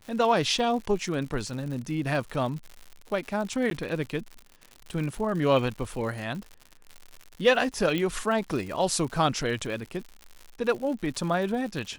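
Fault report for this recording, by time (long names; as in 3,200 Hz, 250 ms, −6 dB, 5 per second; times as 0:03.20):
surface crackle 130 per second −35 dBFS
0:03.70–0:03.71: drop-out
0:07.98: click −16 dBFS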